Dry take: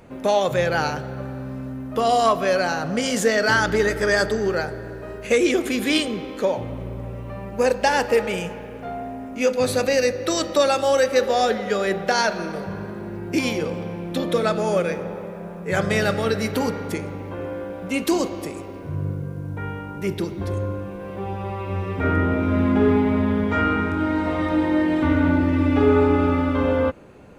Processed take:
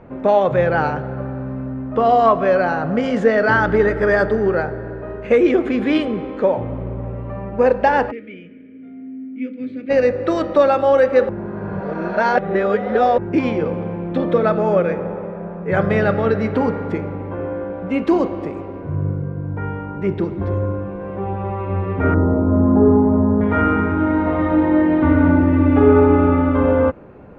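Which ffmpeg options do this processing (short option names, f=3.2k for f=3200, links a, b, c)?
-filter_complex "[0:a]asplit=3[a][b][c];[a]afade=t=out:st=8.1:d=0.02[d];[b]asplit=3[e][f][g];[e]bandpass=f=270:t=q:w=8,volume=0dB[h];[f]bandpass=f=2.29k:t=q:w=8,volume=-6dB[i];[g]bandpass=f=3.01k:t=q:w=8,volume=-9dB[j];[h][i][j]amix=inputs=3:normalize=0,afade=t=in:st=8.1:d=0.02,afade=t=out:st=9.89:d=0.02[k];[c]afade=t=in:st=9.89:d=0.02[l];[d][k][l]amix=inputs=3:normalize=0,asettb=1/sr,asplit=3[m][n][o];[m]atrim=end=22.144[p];[n]atrim=start=22.14:end=23.41,asetpts=PTS-STARTPTS,afade=t=in:d=0.004:c=qsin,afade=t=out:st=1.266:d=0.004:c=qsin,lowpass=f=1.1k:w=0.5412,lowpass=f=1.1k:w=1.3066[q];[o]atrim=start=23.406[r];[p][q]acrossfade=d=0.004:c1=hsin:c2=qsin[s];[s][r]acrossfade=d=0.004:c1=qsin:c2=hsin,asplit=3[t][u][v];[t]atrim=end=11.292[w];[u]atrim=start=11.288:end=13.182,asetpts=PTS-STARTPTS,areverse[x];[v]atrim=start=13.178[y];[w][x]acrossfade=d=0.004:c1=hsin:c2=hsin[z];[z][y]acrossfade=d=0.004:c1=hsin:c2=hsin,lowpass=1.6k,volume=5dB"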